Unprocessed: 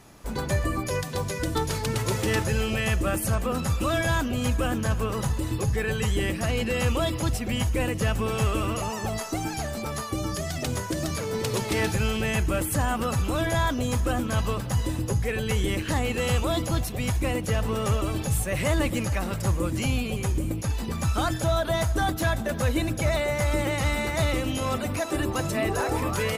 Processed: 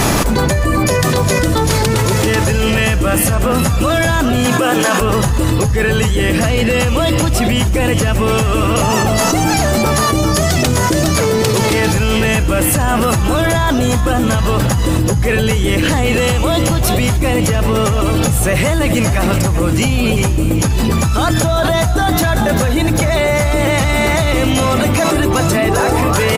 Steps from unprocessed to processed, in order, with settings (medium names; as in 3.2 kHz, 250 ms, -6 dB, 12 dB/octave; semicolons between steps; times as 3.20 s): 4.45–5.00 s: high-pass 190 Hz -> 610 Hz 24 dB/octave; frequency-shifting echo 389 ms, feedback 46%, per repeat +64 Hz, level -13 dB; level flattener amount 100%; trim +6.5 dB